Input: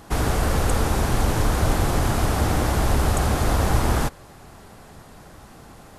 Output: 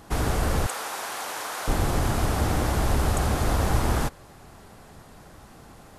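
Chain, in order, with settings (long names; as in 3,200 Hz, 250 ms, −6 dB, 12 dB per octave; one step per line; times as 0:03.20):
0:00.66–0:01.68: high-pass filter 800 Hz 12 dB per octave
level −3 dB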